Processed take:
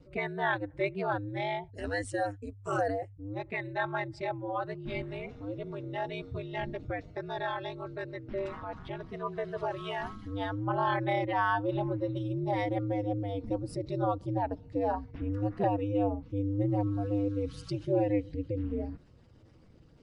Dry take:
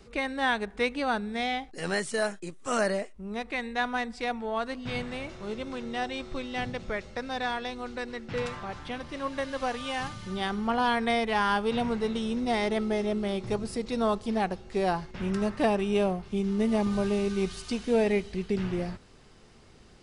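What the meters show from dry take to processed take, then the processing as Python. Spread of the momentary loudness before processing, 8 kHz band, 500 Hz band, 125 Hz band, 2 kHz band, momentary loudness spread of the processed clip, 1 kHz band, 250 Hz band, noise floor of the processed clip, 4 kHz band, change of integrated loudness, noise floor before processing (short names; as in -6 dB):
10 LU, under -10 dB, -3.5 dB, +3.5 dB, -5.0 dB, 10 LU, -2.5 dB, -4.0 dB, -56 dBFS, -11.0 dB, -3.5 dB, -53 dBFS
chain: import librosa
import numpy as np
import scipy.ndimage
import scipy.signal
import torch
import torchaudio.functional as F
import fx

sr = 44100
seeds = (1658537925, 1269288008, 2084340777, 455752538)

y = fx.spec_expand(x, sr, power=1.6)
y = y * np.sin(2.0 * np.pi * 100.0 * np.arange(len(y)) / sr)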